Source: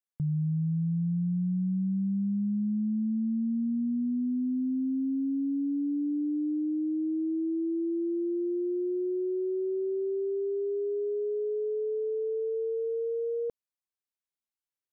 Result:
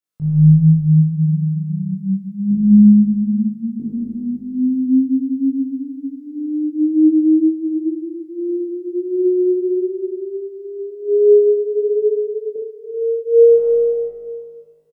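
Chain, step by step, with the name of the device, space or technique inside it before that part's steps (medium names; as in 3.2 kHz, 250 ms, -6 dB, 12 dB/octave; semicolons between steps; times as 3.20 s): 2.51–3.80 s: high-pass 160 Hz 24 dB/octave; tunnel (flutter echo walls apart 3.3 m, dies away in 0.89 s; reverberation RT60 2.3 s, pre-delay 76 ms, DRR -4 dB); 12.02–12.56 s: peaking EQ 170 Hz +14.5 dB 1.9 oct; early reflections 26 ms -3.5 dB, 63 ms -3.5 dB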